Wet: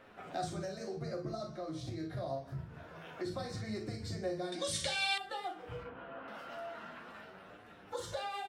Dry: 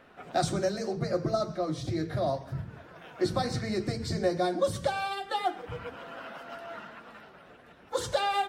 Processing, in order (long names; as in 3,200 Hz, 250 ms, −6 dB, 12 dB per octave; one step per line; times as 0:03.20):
0:05.83–0:06.28: high-frequency loss of the air 480 metres
ambience of single reflections 37 ms −6.5 dB, 56 ms −10.5 dB
downward compressor 2 to 1, threshold −42 dBFS, peak gain reduction 11.5 dB
flanger 0.26 Hz, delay 9.4 ms, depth 6.9 ms, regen +41%
0:04.52–0:05.18: flat-topped bell 4,400 Hz +16 dB 2.8 octaves
level +1.5 dB